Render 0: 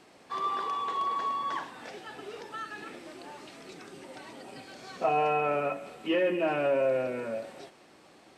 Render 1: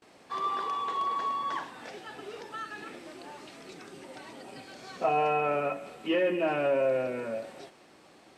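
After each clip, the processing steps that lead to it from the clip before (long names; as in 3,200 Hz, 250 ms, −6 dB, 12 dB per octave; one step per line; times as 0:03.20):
noise gate with hold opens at −49 dBFS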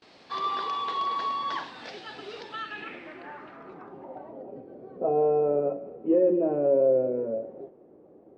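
low-pass filter sweep 4,400 Hz → 460 Hz, 0:02.38–0:04.63
level +1 dB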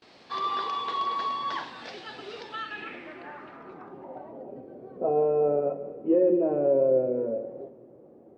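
convolution reverb RT60 1.7 s, pre-delay 8 ms, DRR 12 dB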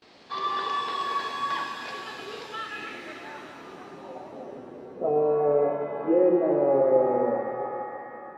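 reverb with rising layers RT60 2.8 s, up +7 semitones, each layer −8 dB, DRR 4 dB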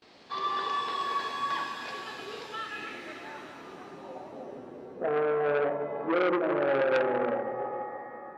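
saturating transformer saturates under 1,900 Hz
level −2 dB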